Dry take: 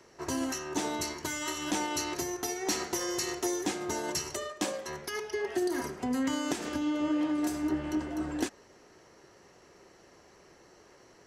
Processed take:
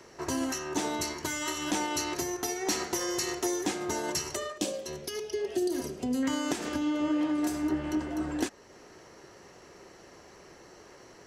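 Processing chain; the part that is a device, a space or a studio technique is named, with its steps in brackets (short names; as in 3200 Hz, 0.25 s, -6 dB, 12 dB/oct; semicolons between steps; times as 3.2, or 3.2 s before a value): parallel compression (in parallel at -1.5 dB: compressor, threshold -45 dBFS, peak gain reduction 18.5 dB); 4.58–6.23 on the sum: band shelf 1300 Hz -10.5 dB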